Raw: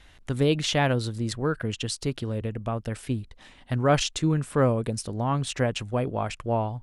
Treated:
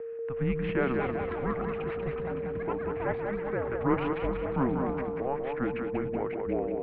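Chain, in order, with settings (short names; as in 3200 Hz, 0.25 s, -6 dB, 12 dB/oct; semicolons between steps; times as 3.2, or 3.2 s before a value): sample-and-hold 4×; echoes that change speed 0.484 s, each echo +7 st, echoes 3, each echo -6 dB; whine 730 Hz -31 dBFS; split-band echo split 450 Hz, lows 0.123 s, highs 0.188 s, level -5 dB; mistuned SSB -270 Hz 360–2500 Hz; gain -4 dB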